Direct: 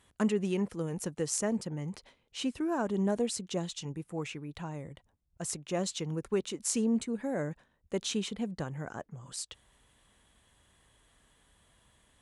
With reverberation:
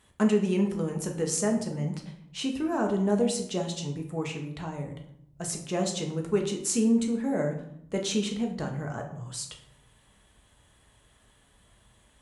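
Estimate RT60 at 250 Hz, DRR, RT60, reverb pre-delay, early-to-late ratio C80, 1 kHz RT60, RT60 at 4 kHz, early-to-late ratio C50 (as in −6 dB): 1.1 s, 2.0 dB, 0.70 s, 5 ms, 11.5 dB, 0.70 s, 0.45 s, 8.5 dB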